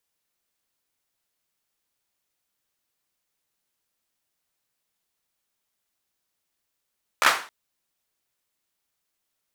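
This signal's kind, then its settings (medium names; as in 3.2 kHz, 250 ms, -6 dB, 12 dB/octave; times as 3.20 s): hand clap length 0.27 s, apart 14 ms, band 1.3 kHz, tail 0.39 s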